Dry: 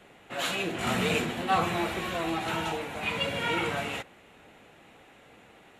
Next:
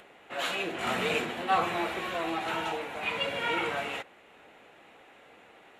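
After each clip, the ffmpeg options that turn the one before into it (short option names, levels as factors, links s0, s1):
-af "bass=f=250:g=-11,treble=f=4000:g=-6,acompressor=mode=upward:threshold=0.00282:ratio=2.5"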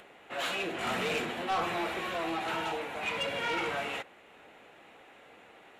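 -af "asoftclip=type=tanh:threshold=0.0531"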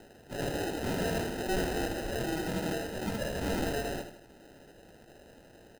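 -filter_complex "[0:a]acrusher=samples=39:mix=1:aa=0.000001,asplit=2[s0][s1];[s1]aecho=0:1:79|158|237|316|395:0.355|0.16|0.0718|0.0323|0.0145[s2];[s0][s2]amix=inputs=2:normalize=0"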